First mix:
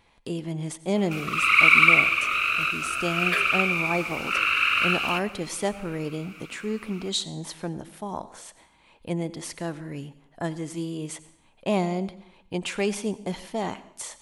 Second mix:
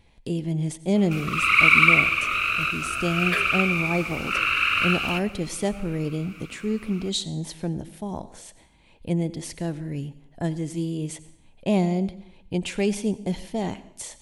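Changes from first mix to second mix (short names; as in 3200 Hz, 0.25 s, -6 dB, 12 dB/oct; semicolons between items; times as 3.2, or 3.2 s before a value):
speech: add bell 1200 Hz -9 dB 0.8 oct; master: add low shelf 190 Hz +10.5 dB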